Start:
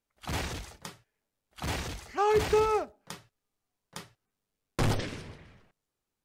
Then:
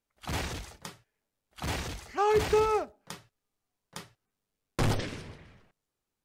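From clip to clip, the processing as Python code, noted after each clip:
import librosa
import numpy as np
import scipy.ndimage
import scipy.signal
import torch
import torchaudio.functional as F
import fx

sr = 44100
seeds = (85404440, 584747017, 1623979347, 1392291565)

y = x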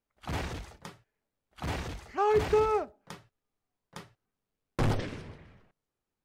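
y = fx.high_shelf(x, sr, hz=3200.0, db=-9.0)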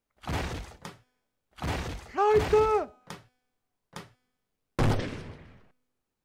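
y = fx.comb_fb(x, sr, f0_hz=250.0, decay_s=1.1, harmonics='all', damping=0.0, mix_pct=40)
y = F.gain(torch.from_numpy(y), 7.0).numpy()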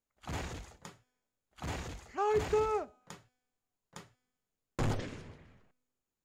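y = fx.peak_eq(x, sr, hz=6900.0, db=9.5, octaves=0.21)
y = F.gain(torch.from_numpy(y), -7.5).numpy()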